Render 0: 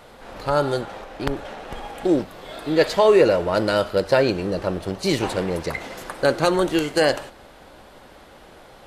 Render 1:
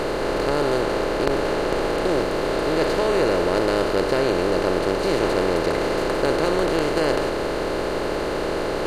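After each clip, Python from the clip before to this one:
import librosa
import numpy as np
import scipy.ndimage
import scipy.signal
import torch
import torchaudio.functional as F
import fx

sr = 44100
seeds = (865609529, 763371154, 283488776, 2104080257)

y = fx.bin_compress(x, sr, power=0.2)
y = fx.low_shelf(y, sr, hz=84.0, db=9.0)
y = F.gain(torch.from_numpy(y), -11.5).numpy()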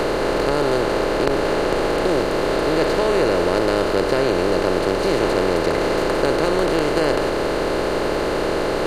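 y = fx.band_squash(x, sr, depth_pct=40)
y = F.gain(torch.from_numpy(y), 2.0).numpy()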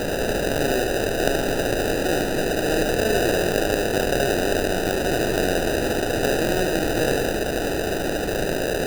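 y = fx.sample_hold(x, sr, seeds[0], rate_hz=1100.0, jitter_pct=0)
y = y + 10.0 ** (-6.0 / 20.0) * np.pad(y, (int(75 * sr / 1000.0), 0))[:len(y)]
y = F.gain(torch.from_numpy(y), -4.0).numpy()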